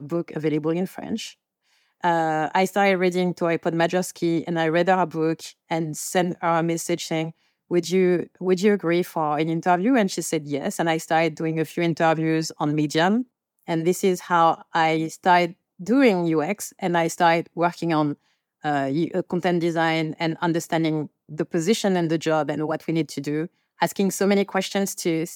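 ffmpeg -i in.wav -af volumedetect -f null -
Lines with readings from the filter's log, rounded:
mean_volume: -22.8 dB
max_volume: -6.1 dB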